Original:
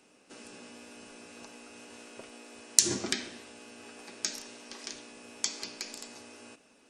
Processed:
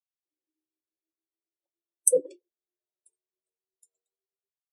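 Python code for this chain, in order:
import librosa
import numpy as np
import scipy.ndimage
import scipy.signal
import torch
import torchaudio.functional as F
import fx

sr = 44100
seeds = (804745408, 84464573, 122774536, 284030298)

y = fx.speed_glide(x, sr, from_pct=125, to_pct=167)
y = fx.cheby_harmonics(y, sr, harmonics=(8,), levels_db=(-29,), full_scale_db=-1.5)
y = fx.spectral_expand(y, sr, expansion=4.0)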